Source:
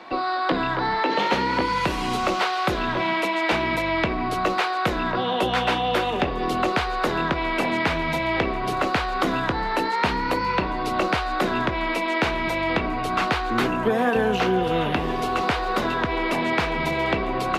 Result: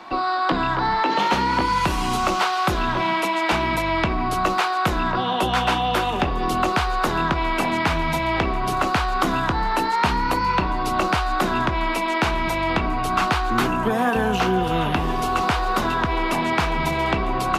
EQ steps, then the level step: graphic EQ 125/250/500/2000/4000 Hz -3/-4/-10/-7/-5 dB; +7.5 dB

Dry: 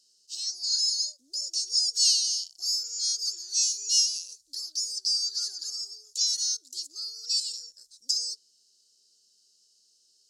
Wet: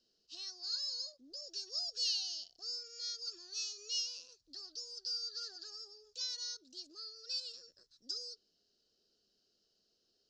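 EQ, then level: LPF 1600 Hz 6 dB/oct; air absorption 210 m; +6.5 dB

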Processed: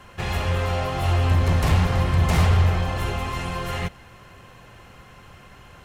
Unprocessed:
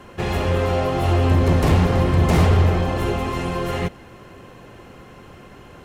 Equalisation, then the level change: bell 330 Hz -11 dB 1.8 oct; 0.0 dB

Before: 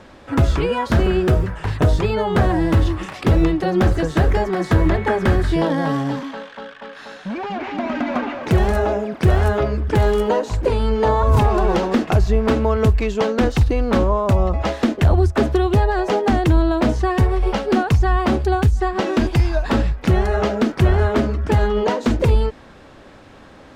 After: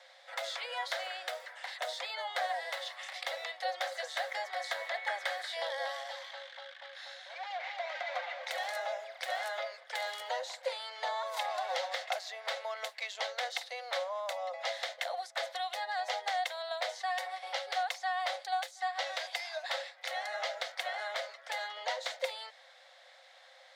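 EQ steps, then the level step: rippled Chebyshev high-pass 510 Hz, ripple 9 dB; bell 2100 Hz +10.5 dB 0.31 oct; resonant high shelf 3000 Hz +7 dB, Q 3; -8.0 dB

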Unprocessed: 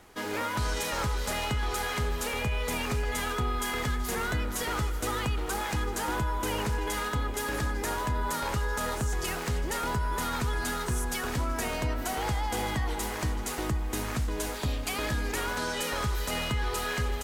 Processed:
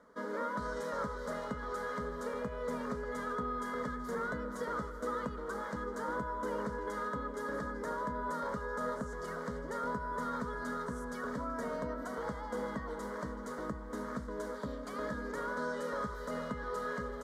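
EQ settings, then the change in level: band-pass 490 Hz, Q 0.5; fixed phaser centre 520 Hz, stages 8; 0.0 dB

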